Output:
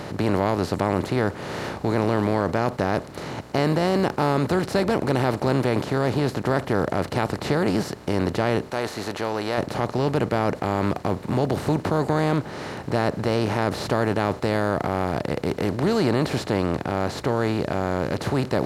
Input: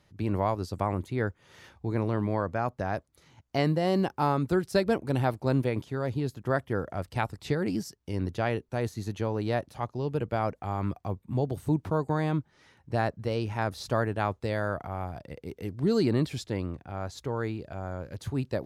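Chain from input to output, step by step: spectral levelling over time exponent 0.4; in parallel at 0 dB: peak limiter -14 dBFS, peak gain reduction 8 dB; 8.71–9.58 s: on the sum: peaking EQ 120 Hz -10.5 dB 3 oct; trim -5 dB

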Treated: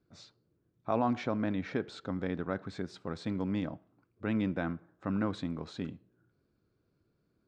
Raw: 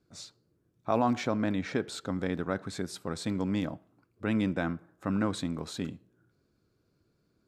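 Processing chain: distance through air 150 m; trim -2.5 dB

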